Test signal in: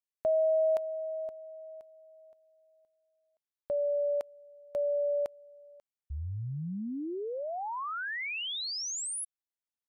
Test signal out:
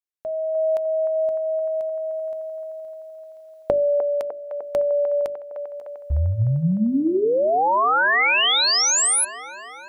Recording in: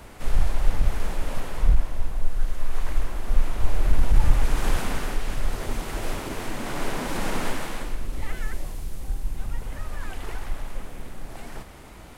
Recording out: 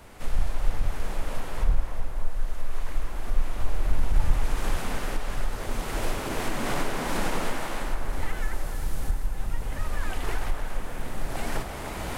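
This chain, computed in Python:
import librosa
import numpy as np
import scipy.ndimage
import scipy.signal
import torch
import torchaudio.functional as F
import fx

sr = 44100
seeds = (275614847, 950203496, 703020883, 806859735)

y = fx.recorder_agc(x, sr, target_db=-12.0, rise_db_per_s=11.0, max_gain_db=26)
y = fx.hum_notches(y, sr, base_hz=50, count=8)
y = fx.echo_wet_bandpass(y, sr, ms=302, feedback_pct=69, hz=910.0, wet_db=-7)
y = y * librosa.db_to_amplitude(-4.0)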